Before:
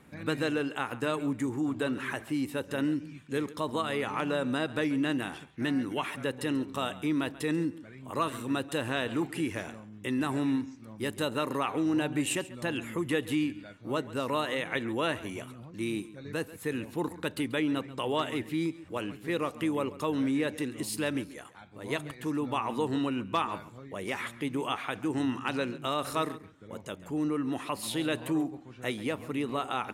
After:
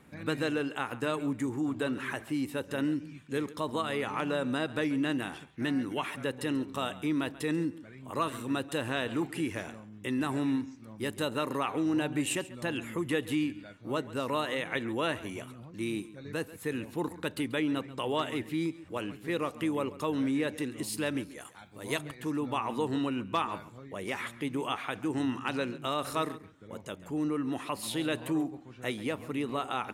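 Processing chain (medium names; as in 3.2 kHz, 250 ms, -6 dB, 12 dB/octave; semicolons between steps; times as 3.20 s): 21.40–21.99 s: treble shelf 5.1 kHz +11.5 dB; trim -1 dB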